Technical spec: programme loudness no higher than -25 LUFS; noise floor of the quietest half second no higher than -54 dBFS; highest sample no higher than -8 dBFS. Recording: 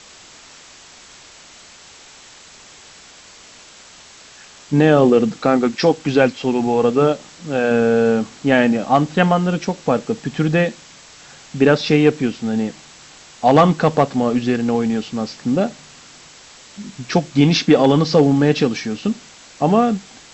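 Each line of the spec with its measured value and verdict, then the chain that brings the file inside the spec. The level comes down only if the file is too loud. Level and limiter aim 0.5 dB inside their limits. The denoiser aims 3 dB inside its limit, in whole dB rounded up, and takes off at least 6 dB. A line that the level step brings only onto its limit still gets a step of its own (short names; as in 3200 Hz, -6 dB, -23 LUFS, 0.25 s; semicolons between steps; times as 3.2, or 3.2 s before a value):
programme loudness -17.0 LUFS: fail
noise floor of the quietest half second -43 dBFS: fail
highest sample -2.5 dBFS: fail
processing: denoiser 6 dB, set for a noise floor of -43 dBFS; gain -8.5 dB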